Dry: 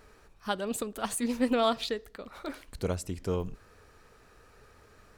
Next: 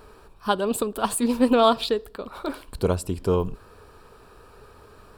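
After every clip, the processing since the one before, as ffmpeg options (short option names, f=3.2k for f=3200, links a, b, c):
-af "equalizer=f=400:t=o:w=0.33:g=4,equalizer=f=1k:t=o:w=0.33:g=6,equalizer=f=2k:t=o:w=0.33:g=-11,equalizer=f=6.3k:t=o:w=0.33:g=-11,volume=7.5dB"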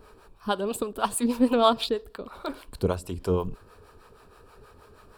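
-filter_complex "[0:a]acrossover=split=480[a][b];[a]aeval=exprs='val(0)*(1-0.7/2+0.7/2*cos(2*PI*6.3*n/s))':c=same[c];[b]aeval=exprs='val(0)*(1-0.7/2-0.7/2*cos(2*PI*6.3*n/s))':c=same[d];[c][d]amix=inputs=2:normalize=0"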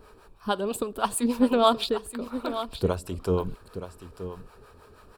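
-af "aecho=1:1:925:0.266"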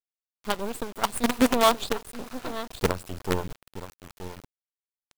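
-af "acrusher=bits=4:dc=4:mix=0:aa=0.000001"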